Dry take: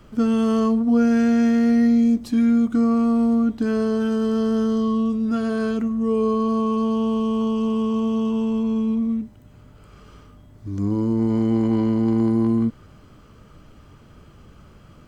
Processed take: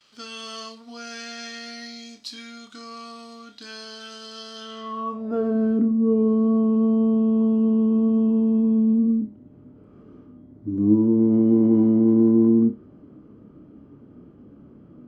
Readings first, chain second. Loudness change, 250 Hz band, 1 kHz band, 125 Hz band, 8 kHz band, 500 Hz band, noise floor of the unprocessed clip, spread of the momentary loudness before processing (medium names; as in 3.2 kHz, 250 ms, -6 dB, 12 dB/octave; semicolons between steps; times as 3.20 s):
+1.0 dB, -1.0 dB, -6.5 dB, -2.5 dB, no reading, -2.0 dB, -49 dBFS, 6 LU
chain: gate with hold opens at -45 dBFS; band-pass sweep 4.3 kHz -> 280 Hz, 4.55–5.56 s; flutter echo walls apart 4.9 m, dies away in 0.22 s; trim +8.5 dB